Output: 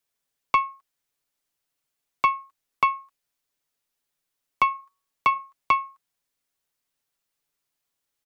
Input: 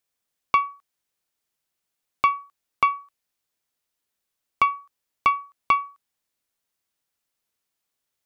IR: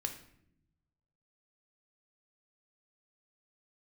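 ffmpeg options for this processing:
-filter_complex "[0:a]afreqshift=-44,aecho=1:1:7.1:0.45,asettb=1/sr,asplit=3[s0][s1][s2];[s0]atrim=end=4.694[s3];[s1]atrim=start=4.69:end=5.4,asetpts=PTS-STARTPTS,afade=t=in:d=0.004:c=qsin,afade=t=out:st=0.706:d=0.004:c=qsin,bandreject=f=185.3:t=h:w=4,bandreject=f=370.6:t=h:w=4,bandreject=f=555.9:t=h:w=4,bandreject=f=741.2:t=h:w=4,bandreject=f=926.5:t=h:w=4,bandreject=f=1111.8:t=h:w=4,bandreject=f=1297.1:t=h:w=4[s4];[s2]atrim=start=5.396[s5];[s3][s4]acrossfade=d=0.004:c1=hsin:c2=qsin[s6];[s6][s5]acrossfade=d=0.004:c1=qsin:c2=hsin,volume=0.891"

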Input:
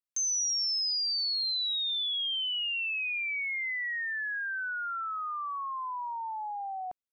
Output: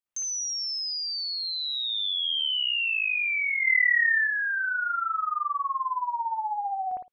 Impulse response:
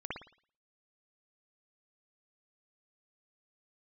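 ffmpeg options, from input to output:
-filter_complex "[0:a]asettb=1/sr,asplit=3[s0][s1][s2];[s0]atrim=end=3.614[s3];[s1]atrim=start=3.61:end=4.2,asetpts=PTS-STARTPTS,afade=t=in:d=0.004:c=qsin,afade=t=out:st=0.586:d=0.004:c=qsin,highshelf=f=2700:t=q:w=3:g=-7.5[s4];[s2]atrim=start=4.196[s5];[s3][s4]acrossfade=d=0.004:c1=hsin:c2=qsin[s6];[s6][s5]acrossfade=d=0.004:c1=qsin:c2=hsin[s7];[1:a]atrim=start_sample=2205,afade=t=out:st=0.21:d=0.01,atrim=end_sample=9702[s8];[s7][s8]afir=irnorm=-1:irlink=0,volume=1.68"

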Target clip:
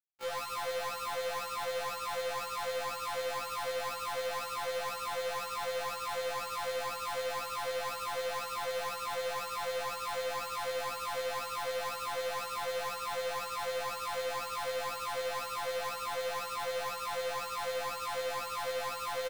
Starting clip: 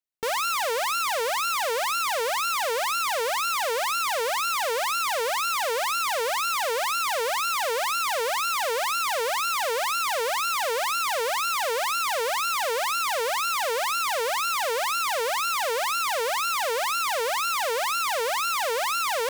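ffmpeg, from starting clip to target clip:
-filter_complex "[0:a]equalizer=f=2200:t=o:w=2.3:g=10.5,afftfilt=real='hypot(re,im)*cos(PI*b)':imag='0':win_size=1024:overlap=0.75,acrossover=split=1200[s0][s1];[s1]alimiter=limit=0.0668:level=0:latency=1:release=422[s2];[s0][s2]amix=inputs=2:normalize=0,lowshelf=f=310:t=q:w=1.5:g=-13,acrusher=bits=4:mix=0:aa=0.5,volume=44.7,asoftclip=hard,volume=0.0224,aecho=1:1:105|268.2:0.447|0.282,afftfilt=real='re*1.73*eq(mod(b,3),0)':imag='im*1.73*eq(mod(b,3),0)':win_size=2048:overlap=0.75"

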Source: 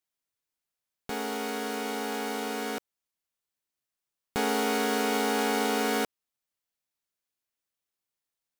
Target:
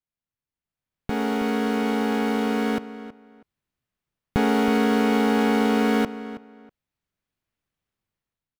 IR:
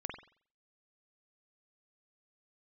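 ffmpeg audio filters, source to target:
-filter_complex "[0:a]bass=f=250:g=13,treble=f=4000:g=-11,dynaudnorm=f=620:g=3:m=4.22,asplit=2[s0][s1];[s1]adelay=322,lowpass=f=3100:p=1,volume=0.2,asplit=2[s2][s3];[s3]adelay=322,lowpass=f=3100:p=1,volume=0.22[s4];[s0][s2][s4]amix=inputs=3:normalize=0,volume=0.501"

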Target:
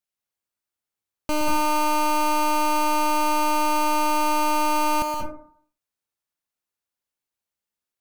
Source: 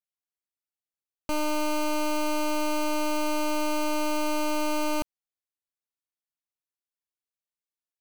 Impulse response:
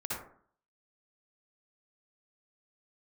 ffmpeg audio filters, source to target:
-filter_complex "[0:a]asplit=2[s0][s1];[1:a]atrim=start_sample=2205,adelay=121[s2];[s1][s2]afir=irnorm=-1:irlink=0,volume=0.631[s3];[s0][s3]amix=inputs=2:normalize=0,volume=1.58"

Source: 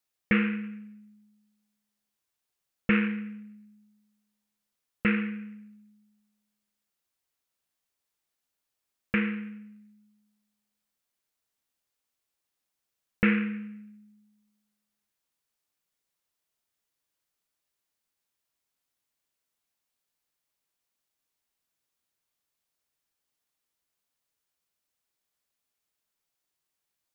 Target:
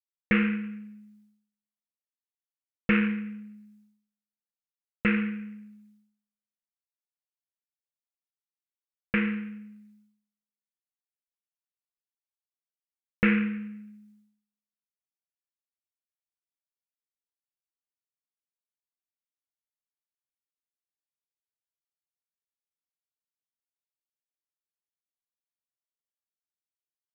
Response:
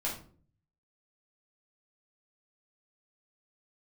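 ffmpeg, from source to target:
-filter_complex "[0:a]agate=range=0.0224:threshold=0.00112:ratio=3:detection=peak,asplit=2[s0][s1];[1:a]atrim=start_sample=2205[s2];[s1][s2]afir=irnorm=-1:irlink=0,volume=0.126[s3];[s0][s3]amix=inputs=2:normalize=0"

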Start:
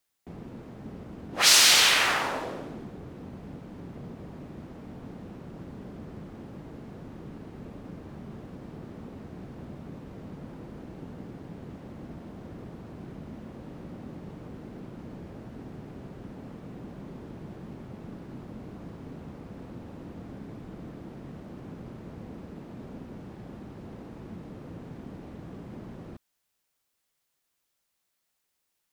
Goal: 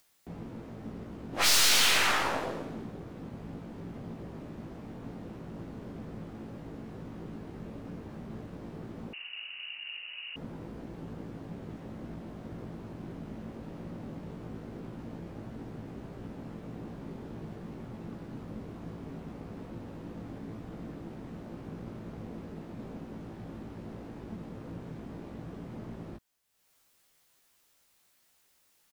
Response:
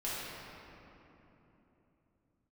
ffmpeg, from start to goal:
-filter_complex "[0:a]acompressor=mode=upward:threshold=0.00141:ratio=2.5,aeval=exprs='(tanh(15.8*val(0)+0.6)-tanh(0.6))/15.8':c=same,asplit=2[s0][s1];[s1]adelay=18,volume=0.562[s2];[s0][s2]amix=inputs=2:normalize=0,asettb=1/sr,asplit=3[s3][s4][s5];[s3]atrim=end=9.134[s6];[s4]atrim=start=9.13:end=10.36,asetpts=PTS-STARTPTS,afade=t=in:d=0.004:c=qsin,afade=t=out:st=1.226:d=0.004:c=qsin,lowpass=f=2600:t=q:w=0.5098,lowpass=f=2600:t=q:w=0.6013,lowpass=f=2600:t=q:w=0.9,lowpass=f=2600:t=q:w=2.563,afreqshift=-3000[s7];[s5]atrim=start=10.356[s8];[s6][s7]acrossfade=d=0.004:c1=hsin:c2=qsin[s9];[s9][s8]acrossfade=d=0.004:c1=qsin:c2=hsin,volume=1.19"

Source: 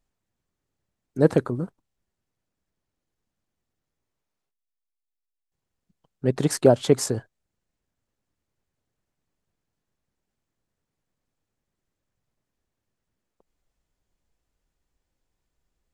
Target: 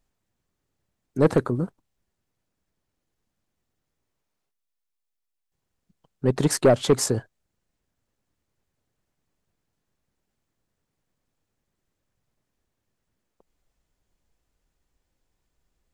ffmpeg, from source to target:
-af "asoftclip=type=tanh:threshold=0.237,volume=1.41"

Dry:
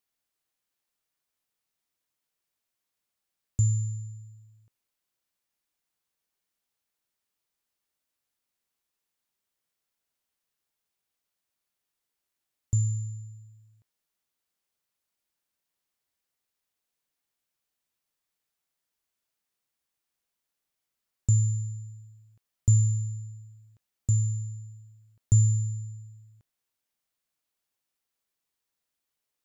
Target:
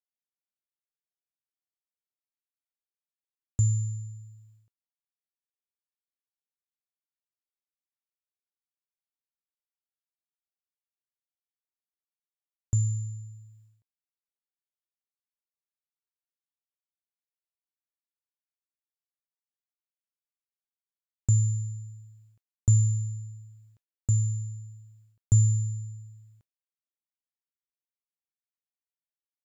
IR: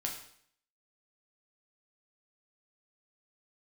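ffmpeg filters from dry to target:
-af "agate=range=0.0224:threshold=0.00158:ratio=3:detection=peak"

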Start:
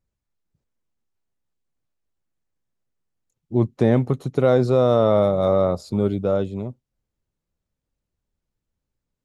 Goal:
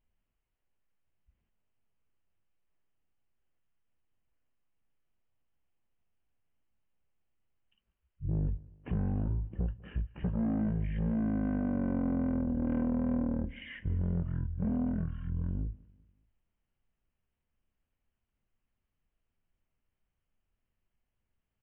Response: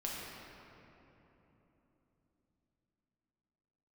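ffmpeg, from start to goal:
-af "acompressor=threshold=0.0398:ratio=2.5,aresample=16000,asoftclip=type=tanh:threshold=0.0531,aresample=44100,aecho=1:1:83|166|249:0.0631|0.0284|0.0128,asetrate=18846,aresample=44100"

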